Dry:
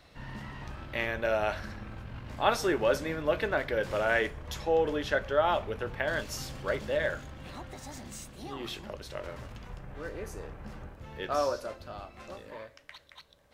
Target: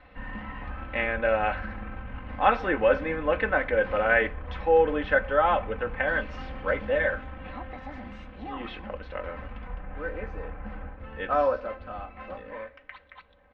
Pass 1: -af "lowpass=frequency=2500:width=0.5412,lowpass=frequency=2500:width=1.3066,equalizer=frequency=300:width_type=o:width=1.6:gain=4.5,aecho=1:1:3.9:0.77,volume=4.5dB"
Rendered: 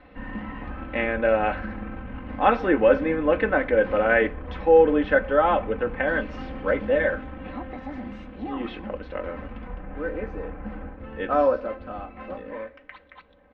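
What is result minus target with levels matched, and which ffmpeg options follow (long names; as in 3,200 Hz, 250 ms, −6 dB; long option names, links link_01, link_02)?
250 Hz band +5.0 dB
-af "lowpass=frequency=2500:width=0.5412,lowpass=frequency=2500:width=1.3066,equalizer=frequency=300:width_type=o:width=1.6:gain=-4.5,aecho=1:1:3.9:0.77,volume=4.5dB"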